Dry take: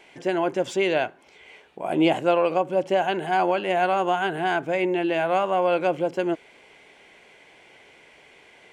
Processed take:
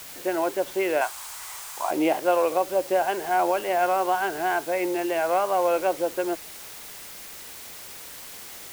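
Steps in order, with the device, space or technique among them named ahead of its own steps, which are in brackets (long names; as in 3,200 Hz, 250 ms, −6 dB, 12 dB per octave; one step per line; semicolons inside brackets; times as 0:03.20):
wax cylinder (band-pass filter 360–2,100 Hz; tape wow and flutter; white noise bed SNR 15 dB)
0:01.01–0:01.91: graphic EQ with 10 bands 125 Hz −6 dB, 250 Hz −11 dB, 500 Hz −8 dB, 1,000 Hz +12 dB, 8,000 Hz +6 dB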